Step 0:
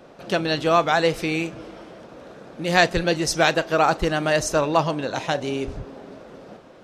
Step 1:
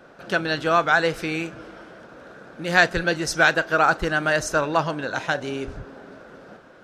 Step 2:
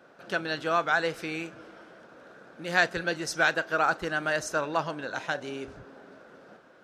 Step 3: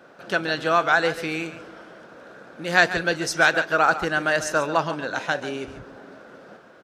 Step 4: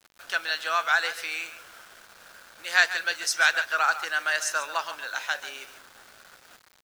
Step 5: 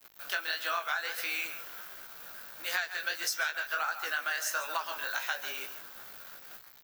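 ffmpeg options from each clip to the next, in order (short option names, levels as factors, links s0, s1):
-af "equalizer=f=1500:w=3.2:g=11,volume=0.708"
-af "highpass=f=170:p=1,volume=0.473"
-af "aecho=1:1:141:0.224,volume=2"
-af "highpass=1200,highshelf=f=4700:g=5,acrusher=bits=7:mix=0:aa=0.000001,volume=0.841"
-af "flanger=delay=15.5:depth=6.7:speed=1.5,aexciter=amount=4.6:drive=6.4:freq=12000,acompressor=threshold=0.0282:ratio=16,volume=1.33"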